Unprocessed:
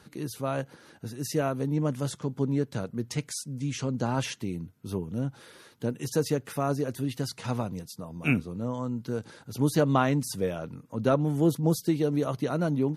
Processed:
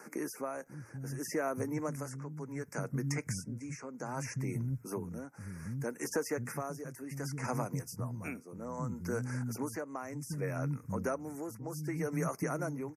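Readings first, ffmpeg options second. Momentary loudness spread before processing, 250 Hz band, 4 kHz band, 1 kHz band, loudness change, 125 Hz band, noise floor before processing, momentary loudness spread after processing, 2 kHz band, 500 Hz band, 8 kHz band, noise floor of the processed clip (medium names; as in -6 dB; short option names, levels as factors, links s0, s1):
11 LU, -10.0 dB, -12.0 dB, -7.5 dB, -8.5 dB, -8.0 dB, -57 dBFS, 8 LU, -5.0 dB, -8.5 dB, -4.5 dB, -55 dBFS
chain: -filter_complex "[0:a]asuperstop=centerf=3500:order=8:qfactor=1.2,acrossover=split=230[s0][s1];[s0]adelay=540[s2];[s2][s1]amix=inputs=2:normalize=0,acrossover=split=1100|3500[s3][s4][s5];[s3]acompressor=threshold=0.00891:ratio=4[s6];[s4]acompressor=threshold=0.00398:ratio=4[s7];[s5]acompressor=threshold=0.00282:ratio=4[s8];[s6][s7][s8]amix=inputs=3:normalize=0,tremolo=f=0.65:d=0.65,volume=2.24"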